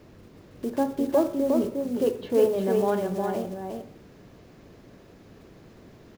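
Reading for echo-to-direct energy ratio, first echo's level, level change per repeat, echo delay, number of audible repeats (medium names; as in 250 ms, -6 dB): -4.0 dB, -4.0 dB, no regular repeats, 357 ms, 1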